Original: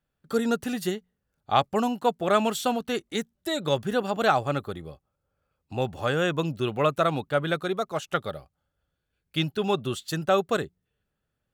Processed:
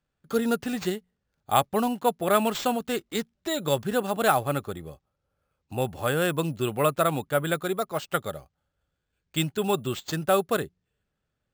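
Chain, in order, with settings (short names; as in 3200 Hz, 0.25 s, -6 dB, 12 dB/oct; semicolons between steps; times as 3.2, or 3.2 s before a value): careless resampling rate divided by 4×, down none, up hold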